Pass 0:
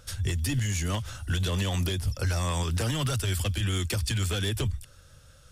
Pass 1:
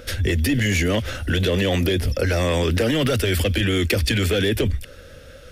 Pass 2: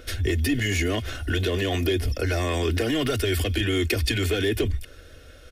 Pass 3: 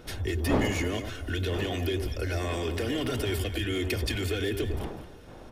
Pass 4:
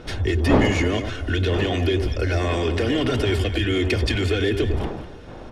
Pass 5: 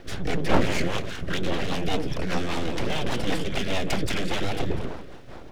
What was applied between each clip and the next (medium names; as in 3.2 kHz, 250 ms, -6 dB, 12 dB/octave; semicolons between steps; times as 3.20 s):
graphic EQ 125/250/500/1000/2000/8000 Hz -7/+7/+11/-8/+8/-9 dB; in parallel at +2.5 dB: compressor with a negative ratio -30 dBFS; on the sum: trim +1.5 dB
comb 2.8 ms, depth 59%; trim -5 dB
wind noise 500 Hz -33 dBFS; on a send: echo whose repeats swap between lows and highs 100 ms, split 1.1 kHz, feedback 55%, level -6.5 dB; on the sum: trim -6.5 dB
distance through air 75 m; trim +8.5 dB
full-wave rectifier; rotary cabinet horn 5 Hz; bit crusher 12-bit